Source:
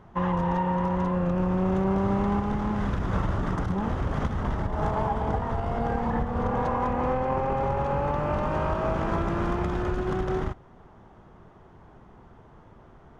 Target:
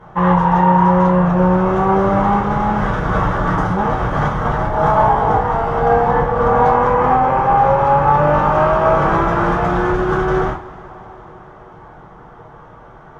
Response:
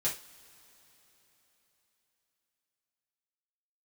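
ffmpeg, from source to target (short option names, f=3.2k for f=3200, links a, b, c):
-filter_complex "[0:a]equalizer=f=1k:w=0.59:g=10.5[a];[1:a]atrim=start_sample=2205,asetrate=40572,aresample=44100[b];[a][b]afir=irnorm=-1:irlink=0,volume=1dB"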